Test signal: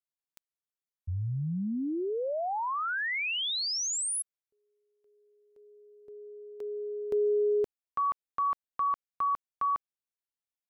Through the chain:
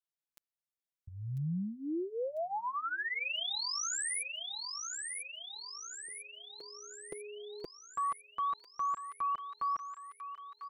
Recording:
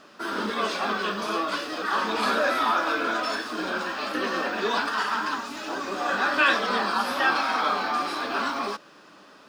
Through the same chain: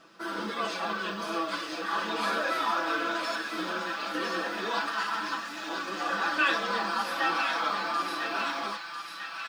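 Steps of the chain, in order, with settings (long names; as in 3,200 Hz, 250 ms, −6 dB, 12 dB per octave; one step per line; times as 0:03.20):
comb filter 6 ms, depth 79%
on a send: delay with a high-pass on its return 997 ms, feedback 58%, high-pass 1,500 Hz, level −5 dB
on the sum: level −7 dB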